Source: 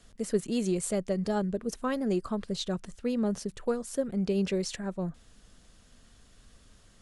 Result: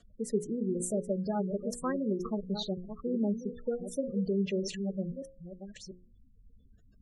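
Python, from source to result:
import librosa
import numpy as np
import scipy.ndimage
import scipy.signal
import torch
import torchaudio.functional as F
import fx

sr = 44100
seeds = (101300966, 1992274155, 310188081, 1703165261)

y = fx.reverse_delay(x, sr, ms=657, wet_db=-9.0)
y = fx.spec_gate(y, sr, threshold_db=-15, keep='strong')
y = fx.hum_notches(y, sr, base_hz=60, count=9)
y = y * 10.0 ** (-1.5 / 20.0)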